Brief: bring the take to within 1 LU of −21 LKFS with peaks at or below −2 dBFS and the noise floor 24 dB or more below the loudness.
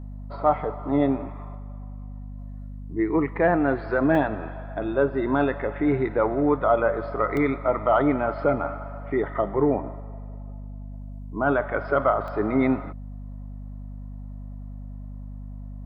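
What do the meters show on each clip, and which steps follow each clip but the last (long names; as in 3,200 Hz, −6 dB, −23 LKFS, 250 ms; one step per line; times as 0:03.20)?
number of dropouts 3; longest dropout 1.4 ms; mains hum 50 Hz; hum harmonics up to 250 Hz; level of the hum −34 dBFS; integrated loudness −24.0 LKFS; sample peak −8.0 dBFS; target loudness −21.0 LKFS
→ repair the gap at 0:04.15/0:07.37/0:12.28, 1.4 ms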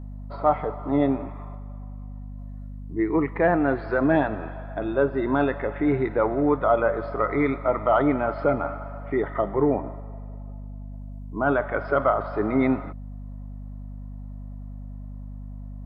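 number of dropouts 0; mains hum 50 Hz; hum harmonics up to 250 Hz; level of the hum −34 dBFS
→ hum removal 50 Hz, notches 5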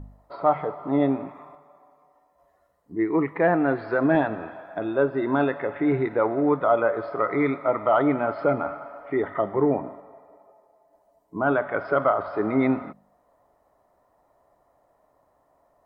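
mains hum none found; integrated loudness −24.0 LKFS; sample peak −8.5 dBFS; target loudness −21.0 LKFS
→ level +3 dB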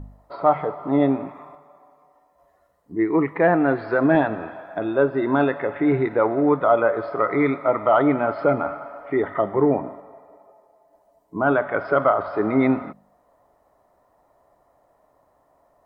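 integrated loudness −21.0 LKFS; sample peak −5.5 dBFS; background noise floor −63 dBFS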